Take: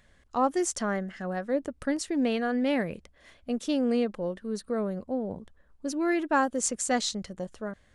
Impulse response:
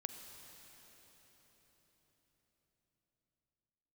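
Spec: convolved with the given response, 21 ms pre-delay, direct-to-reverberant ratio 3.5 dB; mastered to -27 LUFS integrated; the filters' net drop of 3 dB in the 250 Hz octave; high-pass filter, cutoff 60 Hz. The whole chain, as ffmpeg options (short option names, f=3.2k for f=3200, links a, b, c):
-filter_complex "[0:a]highpass=60,equalizer=f=250:t=o:g=-3.5,asplit=2[a][b];[1:a]atrim=start_sample=2205,adelay=21[c];[b][c]afir=irnorm=-1:irlink=0,volume=-1.5dB[d];[a][d]amix=inputs=2:normalize=0,volume=2dB"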